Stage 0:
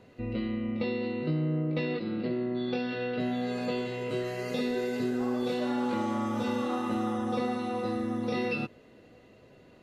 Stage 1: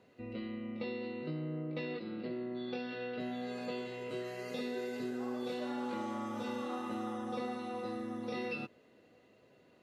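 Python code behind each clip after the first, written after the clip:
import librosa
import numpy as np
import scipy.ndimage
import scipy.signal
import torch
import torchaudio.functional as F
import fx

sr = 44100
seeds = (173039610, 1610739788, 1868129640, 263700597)

y = fx.highpass(x, sr, hz=200.0, slope=6)
y = y * librosa.db_to_amplitude(-7.0)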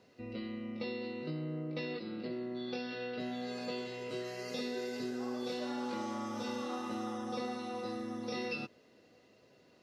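y = fx.peak_eq(x, sr, hz=5300.0, db=11.5, octaves=0.6)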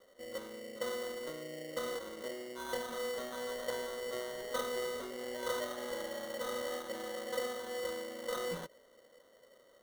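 y = fx.cheby_harmonics(x, sr, harmonics=(8,), levels_db=(-24,), full_scale_db=-26.0)
y = fx.double_bandpass(y, sr, hz=1400.0, octaves=2.7)
y = fx.sample_hold(y, sr, seeds[0], rate_hz=2500.0, jitter_pct=0)
y = y * librosa.db_to_amplitude(10.0)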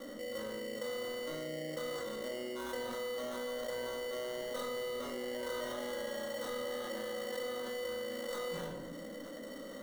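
y = fx.dmg_noise_band(x, sr, seeds[1], low_hz=190.0, high_hz=330.0, level_db=-67.0)
y = fx.room_shoebox(y, sr, seeds[2], volume_m3=740.0, walls='furnished', distance_m=2.3)
y = fx.env_flatten(y, sr, amount_pct=70)
y = y * librosa.db_to_amplitude(-8.0)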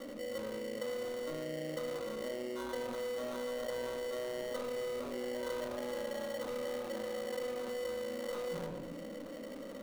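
y = scipy.signal.medfilt(x, 25)
y = y * librosa.db_to_amplitude(1.5)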